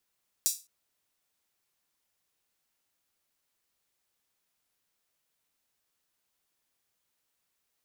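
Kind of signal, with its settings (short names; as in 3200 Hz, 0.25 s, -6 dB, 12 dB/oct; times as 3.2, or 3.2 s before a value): open hi-hat length 0.21 s, high-pass 5900 Hz, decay 0.28 s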